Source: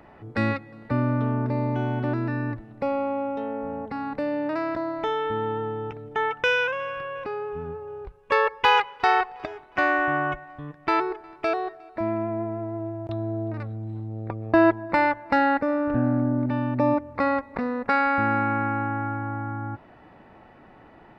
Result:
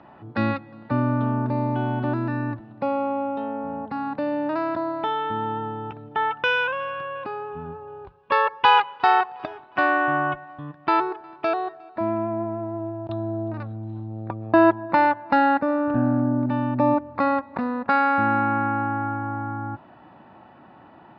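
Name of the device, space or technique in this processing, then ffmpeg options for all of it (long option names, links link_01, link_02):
guitar cabinet: -af "highpass=110,equalizer=frequency=450:width_type=q:width=4:gain=-8,equalizer=frequency=950:width_type=q:width=4:gain=3,equalizer=frequency=2100:width_type=q:width=4:gain=-9,lowpass=frequency=4300:width=0.5412,lowpass=frequency=4300:width=1.3066,volume=2.5dB"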